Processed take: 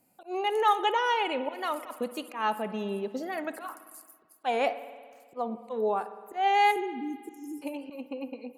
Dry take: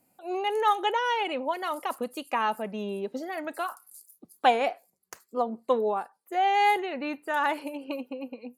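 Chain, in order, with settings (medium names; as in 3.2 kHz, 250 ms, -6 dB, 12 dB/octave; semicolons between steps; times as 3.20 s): slow attack 143 ms; spectral selection erased 6.72–7.62 s, 460–5100 Hz; spring tank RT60 1.7 s, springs 55 ms, chirp 75 ms, DRR 12.5 dB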